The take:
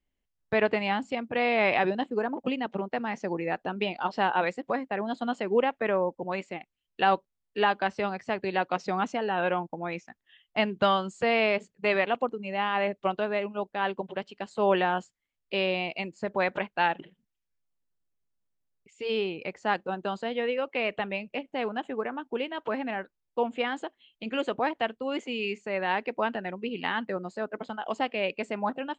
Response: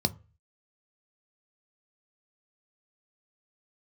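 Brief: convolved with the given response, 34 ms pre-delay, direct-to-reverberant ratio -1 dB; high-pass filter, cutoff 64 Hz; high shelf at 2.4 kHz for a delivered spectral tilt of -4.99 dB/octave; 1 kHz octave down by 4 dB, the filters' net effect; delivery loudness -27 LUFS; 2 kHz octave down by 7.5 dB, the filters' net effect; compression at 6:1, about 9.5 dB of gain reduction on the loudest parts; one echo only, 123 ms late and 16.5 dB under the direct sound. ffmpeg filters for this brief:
-filter_complex "[0:a]highpass=64,equalizer=f=1000:t=o:g=-3.5,equalizer=f=2000:t=o:g=-4.5,highshelf=f=2400:g=-8,acompressor=threshold=0.0316:ratio=6,aecho=1:1:123:0.15,asplit=2[s0][s1];[1:a]atrim=start_sample=2205,adelay=34[s2];[s1][s2]afir=irnorm=-1:irlink=0,volume=0.473[s3];[s0][s3]amix=inputs=2:normalize=0,volume=1.26"

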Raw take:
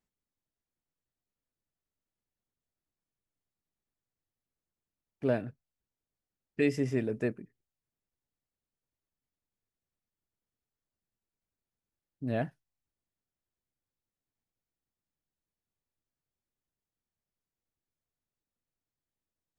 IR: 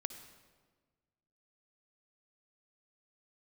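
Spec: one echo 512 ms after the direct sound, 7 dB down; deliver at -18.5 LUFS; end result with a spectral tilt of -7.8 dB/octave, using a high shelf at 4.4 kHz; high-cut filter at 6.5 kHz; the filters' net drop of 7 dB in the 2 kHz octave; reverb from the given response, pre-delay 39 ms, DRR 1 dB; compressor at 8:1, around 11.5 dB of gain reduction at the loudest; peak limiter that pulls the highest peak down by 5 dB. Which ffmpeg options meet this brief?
-filter_complex "[0:a]lowpass=6500,equalizer=f=2000:t=o:g=-8,highshelf=f=4400:g=-3.5,acompressor=threshold=0.0178:ratio=8,alimiter=level_in=2.24:limit=0.0631:level=0:latency=1,volume=0.447,aecho=1:1:512:0.447,asplit=2[s0][s1];[1:a]atrim=start_sample=2205,adelay=39[s2];[s1][s2]afir=irnorm=-1:irlink=0,volume=1[s3];[s0][s3]amix=inputs=2:normalize=0,volume=16.8"

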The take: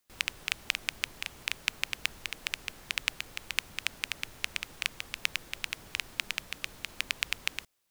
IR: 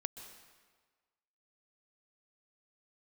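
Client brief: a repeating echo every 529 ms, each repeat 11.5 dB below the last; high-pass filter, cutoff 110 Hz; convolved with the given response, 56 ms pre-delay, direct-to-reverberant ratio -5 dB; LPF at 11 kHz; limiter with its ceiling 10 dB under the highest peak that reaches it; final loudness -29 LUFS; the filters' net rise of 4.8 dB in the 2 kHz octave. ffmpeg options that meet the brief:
-filter_complex "[0:a]highpass=110,lowpass=11000,equalizer=f=2000:t=o:g=6,alimiter=limit=0.237:level=0:latency=1,aecho=1:1:529|1058|1587:0.266|0.0718|0.0194,asplit=2[s0][s1];[1:a]atrim=start_sample=2205,adelay=56[s2];[s1][s2]afir=irnorm=-1:irlink=0,volume=2.11[s3];[s0][s3]amix=inputs=2:normalize=0,volume=1.12"

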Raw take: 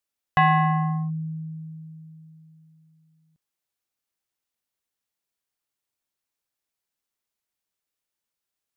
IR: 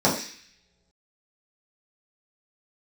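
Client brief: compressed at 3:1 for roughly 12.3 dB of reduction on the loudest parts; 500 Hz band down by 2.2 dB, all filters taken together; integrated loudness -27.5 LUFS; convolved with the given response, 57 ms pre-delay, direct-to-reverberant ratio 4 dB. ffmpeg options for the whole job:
-filter_complex "[0:a]equalizer=f=500:t=o:g=-4.5,acompressor=threshold=0.02:ratio=3,asplit=2[s0][s1];[1:a]atrim=start_sample=2205,adelay=57[s2];[s1][s2]afir=irnorm=-1:irlink=0,volume=0.0841[s3];[s0][s3]amix=inputs=2:normalize=0,volume=1.19"

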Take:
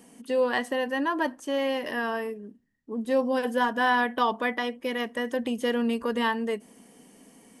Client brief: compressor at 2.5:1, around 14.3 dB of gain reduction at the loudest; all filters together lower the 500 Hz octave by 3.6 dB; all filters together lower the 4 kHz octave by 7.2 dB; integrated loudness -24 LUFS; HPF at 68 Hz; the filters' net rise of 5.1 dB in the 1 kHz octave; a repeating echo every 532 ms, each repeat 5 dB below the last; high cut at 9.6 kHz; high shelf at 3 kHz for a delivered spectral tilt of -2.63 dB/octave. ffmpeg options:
-af "highpass=68,lowpass=9600,equalizer=f=500:t=o:g=-5.5,equalizer=f=1000:t=o:g=8.5,highshelf=f=3000:g=-8.5,equalizer=f=4000:t=o:g=-5.5,acompressor=threshold=0.0126:ratio=2.5,aecho=1:1:532|1064|1596|2128|2660|3192|3724:0.562|0.315|0.176|0.0988|0.0553|0.031|0.0173,volume=3.98"

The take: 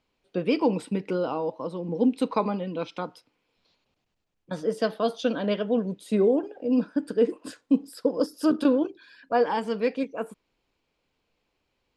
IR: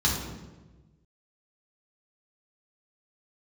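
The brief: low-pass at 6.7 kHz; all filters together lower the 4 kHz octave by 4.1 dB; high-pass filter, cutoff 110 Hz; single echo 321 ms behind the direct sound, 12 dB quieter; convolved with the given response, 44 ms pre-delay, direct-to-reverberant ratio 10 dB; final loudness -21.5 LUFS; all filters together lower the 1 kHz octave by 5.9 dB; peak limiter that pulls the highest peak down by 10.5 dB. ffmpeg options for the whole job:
-filter_complex "[0:a]highpass=110,lowpass=6700,equalizer=f=1000:t=o:g=-8,equalizer=f=4000:t=o:g=-4.5,alimiter=limit=0.0794:level=0:latency=1,aecho=1:1:321:0.251,asplit=2[s0][s1];[1:a]atrim=start_sample=2205,adelay=44[s2];[s1][s2]afir=irnorm=-1:irlink=0,volume=0.0794[s3];[s0][s3]amix=inputs=2:normalize=0,volume=3.16"

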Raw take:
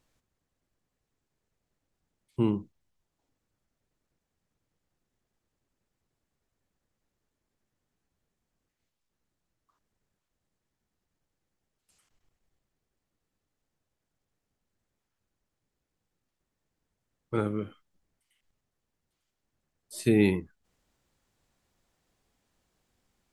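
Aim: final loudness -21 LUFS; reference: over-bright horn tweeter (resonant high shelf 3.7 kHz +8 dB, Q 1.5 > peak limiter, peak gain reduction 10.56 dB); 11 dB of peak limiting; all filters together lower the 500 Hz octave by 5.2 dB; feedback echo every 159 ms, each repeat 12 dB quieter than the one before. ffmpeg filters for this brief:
-af "equalizer=f=500:t=o:g=-7.5,alimiter=limit=0.0668:level=0:latency=1,highshelf=f=3700:t=q:w=1.5:g=8,aecho=1:1:159|318|477:0.251|0.0628|0.0157,volume=11.9,alimiter=limit=0.355:level=0:latency=1"

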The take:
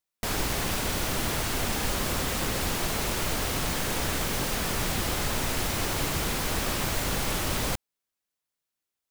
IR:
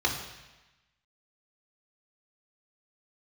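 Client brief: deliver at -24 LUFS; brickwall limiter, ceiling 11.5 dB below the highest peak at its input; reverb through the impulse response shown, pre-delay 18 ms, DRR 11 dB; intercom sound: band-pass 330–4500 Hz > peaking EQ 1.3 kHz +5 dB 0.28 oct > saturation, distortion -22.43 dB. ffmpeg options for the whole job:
-filter_complex "[0:a]alimiter=level_in=1.12:limit=0.0631:level=0:latency=1,volume=0.891,asplit=2[s0][s1];[1:a]atrim=start_sample=2205,adelay=18[s2];[s1][s2]afir=irnorm=-1:irlink=0,volume=0.0794[s3];[s0][s3]amix=inputs=2:normalize=0,highpass=330,lowpass=4500,equalizer=f=1300:t=o:w=0.28:g=5,asoftclip=threshold=0.0376,volume=4.73"

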